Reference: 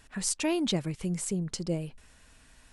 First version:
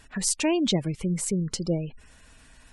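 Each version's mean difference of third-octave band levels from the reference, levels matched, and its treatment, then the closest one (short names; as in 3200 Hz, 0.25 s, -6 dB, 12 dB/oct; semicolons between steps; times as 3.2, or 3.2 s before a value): 3.0 dB: spectral gate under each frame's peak -30 dB strong; gain +4.5 dB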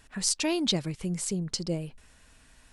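1.0 dB: dynamic EQ 4600 Hz, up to +8 dB, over -49 dBFS, Q 1.4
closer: second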